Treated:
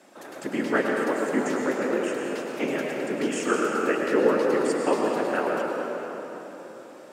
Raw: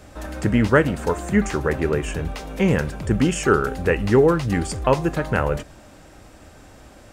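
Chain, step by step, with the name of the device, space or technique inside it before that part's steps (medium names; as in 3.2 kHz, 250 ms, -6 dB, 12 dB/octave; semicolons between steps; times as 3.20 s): whispering ghost (whisper effect; high-pass 250 Hz 24 dB/octave; reverberation RT60 4.0 s, pre-delay 95 ms, DRR -1 dB); trim -6.5 dB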